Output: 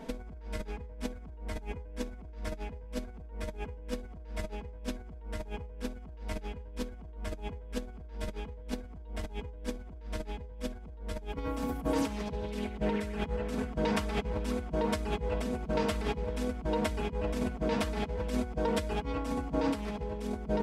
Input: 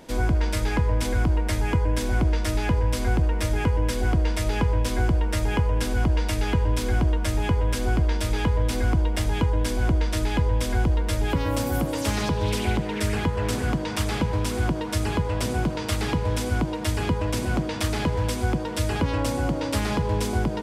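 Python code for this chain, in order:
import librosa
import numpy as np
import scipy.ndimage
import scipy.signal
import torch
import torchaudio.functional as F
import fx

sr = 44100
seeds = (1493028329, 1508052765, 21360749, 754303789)

y = fx.high_shelf(x, sr, hz=2900.0, db=-11.0)
y = y + 0.91 * np.pad(y, (int(4.5 * sr / 1000.0), 0))[:len(y)]
y = fx.over_compress(y, sr, threshold_db=-27.0, ratio=-0.5)
y = y * 10.0 ** (-7.0 / 20.0)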